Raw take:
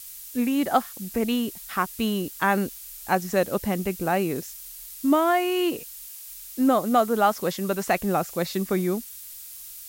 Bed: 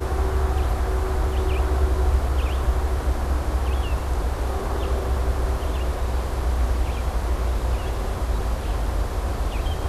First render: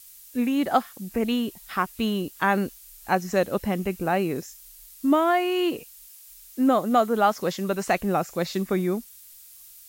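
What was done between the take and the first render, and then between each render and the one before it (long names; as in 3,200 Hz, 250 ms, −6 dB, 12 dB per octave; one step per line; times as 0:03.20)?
noise reduction from a noise print 7 dB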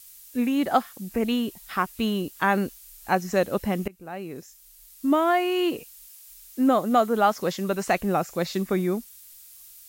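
0:03.88–0:05.32: fade in, from −22.5 dB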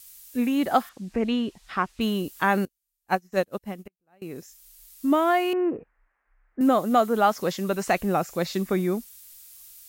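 0:00.89–0:02.01: high-frequency loss of the air 92 metres
0:02.65–0:04.22: expander for the loud parts 2.5 to 1, over −41 dBFS
0:05.53–0:06.61: Butterworth low-pass 1,900 Hz 48 dB per octave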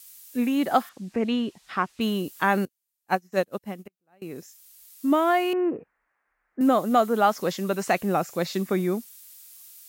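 high-pass filter 110 Hz 12 dB per octave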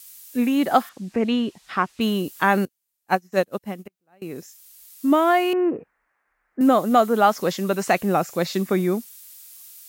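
level +3.5 dB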